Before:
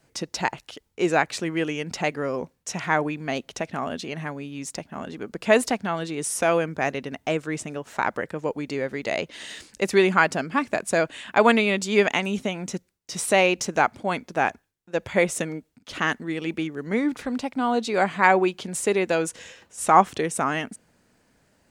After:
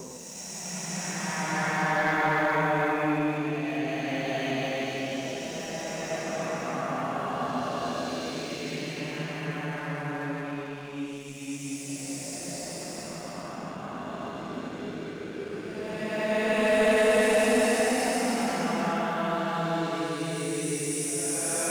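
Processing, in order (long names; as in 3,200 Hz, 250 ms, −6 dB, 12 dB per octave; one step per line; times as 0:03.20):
extreme stretch with random phases 5.7×, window 0.50 s, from 0:02.53
leveller curve on the samples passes 2
level −8.5 dB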